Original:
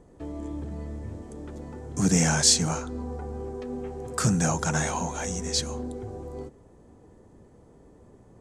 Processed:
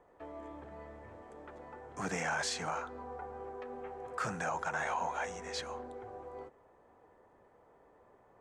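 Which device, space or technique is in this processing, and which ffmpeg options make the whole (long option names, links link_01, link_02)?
DJ mixer with the lows and highs turned down: -filter_complex "[0:a]acrossover=split=560 2600:gain=0.0891 1 0.1[link_01][link_02][link_03];[link_01][link_02][link_03]amix=inputs=3:normalize=0,alimiter=level_in=2.5dB:limit=-24dB:level=0:latency=1:release=53,volume=-2.5dB,volume=1dB"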